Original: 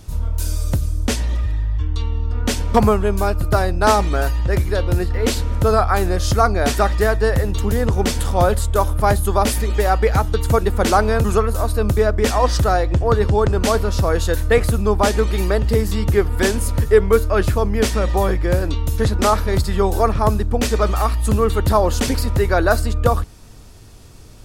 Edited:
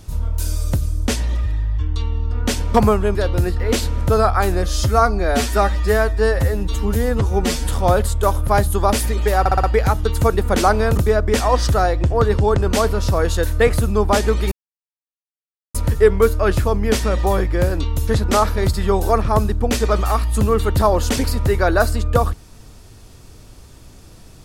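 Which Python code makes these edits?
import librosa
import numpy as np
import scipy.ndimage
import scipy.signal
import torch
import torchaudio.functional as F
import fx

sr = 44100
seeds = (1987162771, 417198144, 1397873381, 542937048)

y = fx.edit(x, sr, fx.cut(start_s=3.15, length_s=1.54),
    fx.stretch_span(start_s=6.18, length_s=2.03, factor=1.5),
    fx.stutter(start_s=9.92, slice_s=0.06, count=5),
    fx.cut(start_s=11.26, length_s=0.62),
    fx.silence(start_s=15.42, length_s=1.23), tone=tone)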